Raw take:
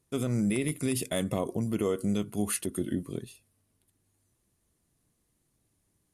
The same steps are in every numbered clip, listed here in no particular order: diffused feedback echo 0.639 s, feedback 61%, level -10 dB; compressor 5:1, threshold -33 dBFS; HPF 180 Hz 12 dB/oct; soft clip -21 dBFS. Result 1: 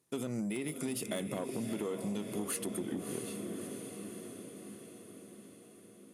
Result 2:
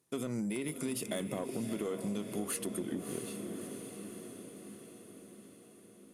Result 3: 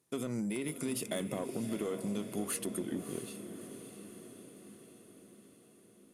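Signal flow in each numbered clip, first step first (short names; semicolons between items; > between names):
diffused feedback echo > soft clip > HPF > compressor; HPF > soft clip > diffused feedback echo > compressor; HPF > soft clip > compressor > diffused feedback echo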